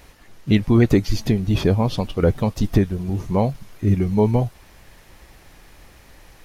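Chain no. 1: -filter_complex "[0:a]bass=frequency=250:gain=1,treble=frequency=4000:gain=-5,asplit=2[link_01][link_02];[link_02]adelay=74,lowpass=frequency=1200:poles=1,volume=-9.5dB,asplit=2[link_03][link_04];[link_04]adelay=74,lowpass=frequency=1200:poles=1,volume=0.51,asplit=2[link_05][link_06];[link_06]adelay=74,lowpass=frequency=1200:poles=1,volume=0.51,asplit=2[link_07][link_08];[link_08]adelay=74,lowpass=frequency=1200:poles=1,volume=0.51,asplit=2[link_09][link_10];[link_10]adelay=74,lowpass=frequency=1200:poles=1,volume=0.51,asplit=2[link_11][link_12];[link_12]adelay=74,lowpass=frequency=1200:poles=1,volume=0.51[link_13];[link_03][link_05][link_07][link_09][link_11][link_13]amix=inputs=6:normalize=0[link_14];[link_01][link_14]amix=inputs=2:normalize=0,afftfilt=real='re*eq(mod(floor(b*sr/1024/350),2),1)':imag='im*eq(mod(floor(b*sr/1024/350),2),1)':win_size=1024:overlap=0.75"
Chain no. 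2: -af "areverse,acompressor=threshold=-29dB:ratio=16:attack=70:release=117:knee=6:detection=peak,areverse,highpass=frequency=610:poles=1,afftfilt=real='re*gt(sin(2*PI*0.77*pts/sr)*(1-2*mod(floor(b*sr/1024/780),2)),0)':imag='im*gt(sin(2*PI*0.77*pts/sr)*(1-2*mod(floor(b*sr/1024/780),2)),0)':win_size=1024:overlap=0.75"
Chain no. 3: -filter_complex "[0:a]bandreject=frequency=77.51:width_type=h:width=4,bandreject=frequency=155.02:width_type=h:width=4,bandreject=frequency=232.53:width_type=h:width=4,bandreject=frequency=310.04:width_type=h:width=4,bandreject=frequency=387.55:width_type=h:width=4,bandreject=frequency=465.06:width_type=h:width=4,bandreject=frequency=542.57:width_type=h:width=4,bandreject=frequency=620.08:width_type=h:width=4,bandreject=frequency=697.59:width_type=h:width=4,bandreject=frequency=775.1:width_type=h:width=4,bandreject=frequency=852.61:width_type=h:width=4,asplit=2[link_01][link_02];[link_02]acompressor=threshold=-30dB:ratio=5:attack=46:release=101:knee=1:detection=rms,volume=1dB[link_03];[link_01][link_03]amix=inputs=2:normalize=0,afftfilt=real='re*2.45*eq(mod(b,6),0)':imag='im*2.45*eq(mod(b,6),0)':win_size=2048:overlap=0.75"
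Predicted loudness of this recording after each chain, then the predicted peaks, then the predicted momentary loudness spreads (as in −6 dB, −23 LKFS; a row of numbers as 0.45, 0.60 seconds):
−27.5, −40.5, −22.0 LKFS; −8.5, −21.0, −4.5 dBFS; 12, 17, 10 LU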